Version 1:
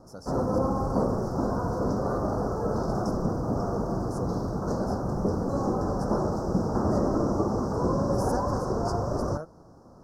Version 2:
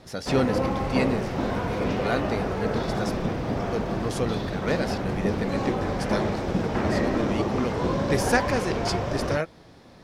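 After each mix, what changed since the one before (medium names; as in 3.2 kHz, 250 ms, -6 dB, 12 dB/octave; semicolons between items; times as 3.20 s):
speech +9.5 dB; master: remove elliptic band-stop 1.3–5.3 kHz, stop band 70 dB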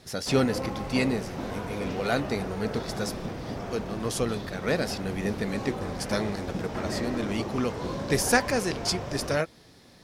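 background -7.5 dB; master: add treble shelf 5.8 kHz +8.5 dB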